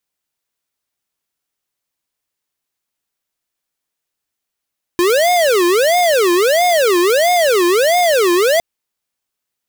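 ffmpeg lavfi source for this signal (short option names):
-f lavfi -i "aevalsrc='0.237*(2*lt(mod((532*t-186/(2*PI*1.5)*sin(2*PI*1.5*t)),1),0.5)-1)':d=3.61:s=44100"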